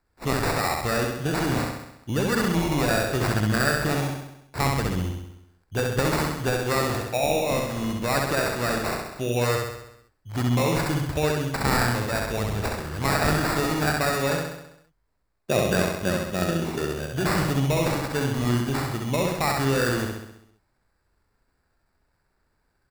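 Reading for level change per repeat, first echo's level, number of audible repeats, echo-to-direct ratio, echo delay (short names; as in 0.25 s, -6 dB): -4.5 dB, -3.0 dB, 7, -1.0 dB, 66 ms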